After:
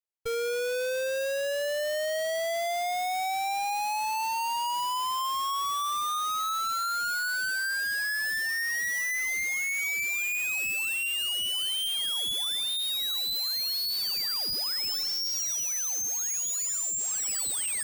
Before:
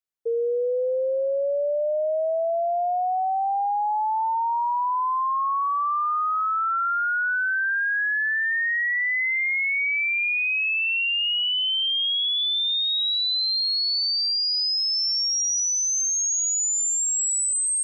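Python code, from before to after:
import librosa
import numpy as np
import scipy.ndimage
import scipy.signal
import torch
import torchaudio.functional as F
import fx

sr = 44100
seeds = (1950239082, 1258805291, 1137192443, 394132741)

y = fx.halfwave_hold(x, sr)
y = fx.cheby_harmonics(y, sr, harmonics=(6,), levels_db=(-11,), full_scale_db=-20.5)
y = F.gain(torch.from_numpy(y), -8.5).numpy()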